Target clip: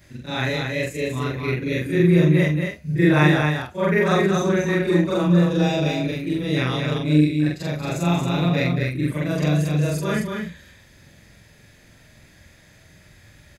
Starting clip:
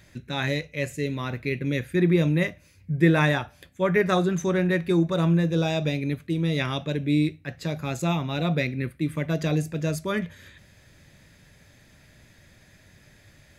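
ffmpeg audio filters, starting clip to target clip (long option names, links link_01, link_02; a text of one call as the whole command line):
ffmpeg -i in.wav -af "afftfilt=real='re':imag='-im':win_size=4096:overlap=0.75,aecho=1:1:228:0.596,volume=7dB" out.wav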